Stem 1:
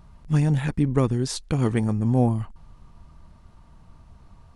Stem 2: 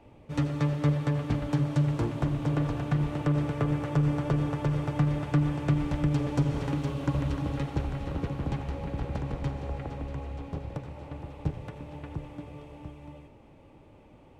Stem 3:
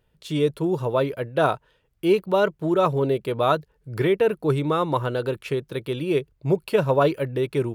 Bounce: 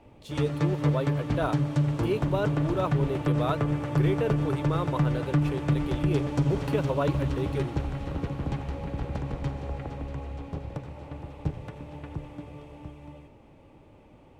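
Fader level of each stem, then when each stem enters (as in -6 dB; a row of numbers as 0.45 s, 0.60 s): mute, +0.5 dB, -9.0 dB; mute, 0.00 s, 0.00 s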